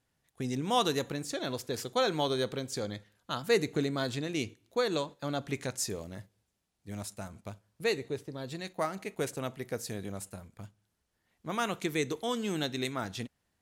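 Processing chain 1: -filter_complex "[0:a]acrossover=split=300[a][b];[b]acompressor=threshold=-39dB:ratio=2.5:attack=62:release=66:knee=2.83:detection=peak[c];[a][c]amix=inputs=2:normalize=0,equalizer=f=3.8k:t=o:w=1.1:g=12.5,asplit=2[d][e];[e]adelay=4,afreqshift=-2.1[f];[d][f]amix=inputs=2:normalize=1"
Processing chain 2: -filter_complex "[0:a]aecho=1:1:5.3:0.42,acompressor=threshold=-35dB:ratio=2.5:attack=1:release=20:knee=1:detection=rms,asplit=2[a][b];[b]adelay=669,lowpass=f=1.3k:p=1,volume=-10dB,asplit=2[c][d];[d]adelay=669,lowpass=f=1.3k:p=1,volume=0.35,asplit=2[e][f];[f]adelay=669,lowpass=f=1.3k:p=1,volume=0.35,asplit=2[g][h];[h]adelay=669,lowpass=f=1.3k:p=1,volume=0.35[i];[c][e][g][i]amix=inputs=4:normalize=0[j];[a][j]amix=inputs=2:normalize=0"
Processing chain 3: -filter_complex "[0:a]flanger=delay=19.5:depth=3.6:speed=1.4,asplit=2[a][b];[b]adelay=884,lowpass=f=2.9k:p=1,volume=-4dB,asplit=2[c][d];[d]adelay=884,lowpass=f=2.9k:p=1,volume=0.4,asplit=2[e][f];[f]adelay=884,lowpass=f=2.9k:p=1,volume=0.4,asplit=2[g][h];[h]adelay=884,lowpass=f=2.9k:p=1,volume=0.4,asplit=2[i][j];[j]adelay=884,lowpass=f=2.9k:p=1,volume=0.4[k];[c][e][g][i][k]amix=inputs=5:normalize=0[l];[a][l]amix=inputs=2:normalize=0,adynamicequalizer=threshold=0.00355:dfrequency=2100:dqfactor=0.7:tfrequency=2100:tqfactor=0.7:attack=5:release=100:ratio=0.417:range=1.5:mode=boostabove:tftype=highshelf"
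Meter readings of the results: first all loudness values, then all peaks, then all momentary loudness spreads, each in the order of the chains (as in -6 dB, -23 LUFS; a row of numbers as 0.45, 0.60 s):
-34.5, -39.0, -35.0 LUFS; -15.0, -24.0, -13.5 dBFS; 15, 11, 12 LU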